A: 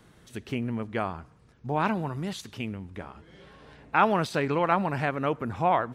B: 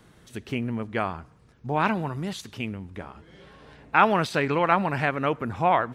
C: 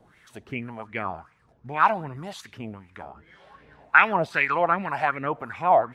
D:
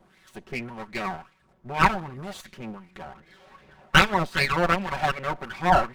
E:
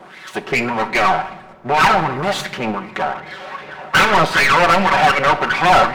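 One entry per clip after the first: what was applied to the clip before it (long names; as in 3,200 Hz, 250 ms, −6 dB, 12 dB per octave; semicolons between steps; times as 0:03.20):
dynamic equaliser 2,200 Hz, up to +4 dB, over −39 dBFS, Q 0.81; level +1.5 dB
two-band tremolo in antiphase 1.9 Hz, depth 70%, crossover 700 Hz; auto-filter bell 2.6 Hz 660–2,300 Hz +17 dB; level −4 dB
lower of the sound and its delayed copy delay 5.3 ms; level +1 dB
mid-hump overdrive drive 33 dB, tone 2,500 Hz, clips at −1 dBFS; rectangular room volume 490 cubic metres, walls mixed, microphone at 0.39 metres; level −2.5 dB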